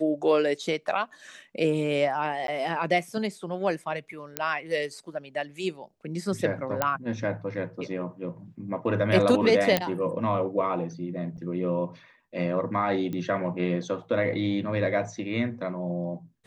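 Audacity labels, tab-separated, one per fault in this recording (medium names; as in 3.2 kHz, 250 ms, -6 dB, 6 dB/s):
2.470000	2.480000	dropout 12 ms
4.370000	4.370000	pop -9 dBFS
6.820000	6.820000	pop -9 dBFS
9.770000	9.770000	pop -7 dBFS
11.370000	11.380000	dropout 8.7 ms
13.130000	13.130000	pop -22 dBFS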